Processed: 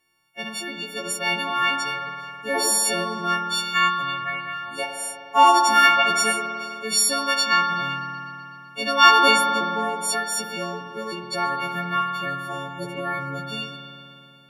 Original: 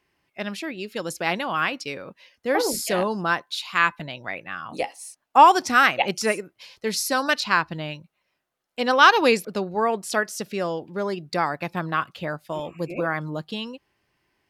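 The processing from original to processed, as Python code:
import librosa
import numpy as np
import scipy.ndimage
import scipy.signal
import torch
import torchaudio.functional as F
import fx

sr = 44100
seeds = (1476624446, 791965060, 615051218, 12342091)

y = fx.freq_snap(x, sr, grid_st=4)
y = fx.rev_spring(y, sr, rt60_s=2.9, pass_ms=(51,), chirp_ms=75, drr_db=2.5)
y = y * librosa.db_to_amplitude(-5.0)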